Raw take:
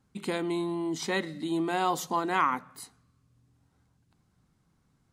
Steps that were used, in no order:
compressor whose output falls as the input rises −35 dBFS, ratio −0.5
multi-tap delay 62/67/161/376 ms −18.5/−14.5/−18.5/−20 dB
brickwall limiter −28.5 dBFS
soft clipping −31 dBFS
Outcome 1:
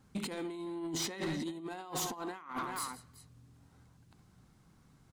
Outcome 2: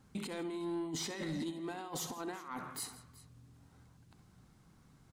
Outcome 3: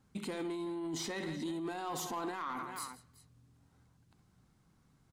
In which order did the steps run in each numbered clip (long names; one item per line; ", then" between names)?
multi-tap delay, then compressor whose output falls as the input rises, then soft clipping, then brickwall limiter
compressor whose output falls as the input rises, then brickwall limiter, then multi-tap delay, then soft clipping
multi-tap delay, then brickwall limiter, then compressor whose output falls as the input rises, then soft clipping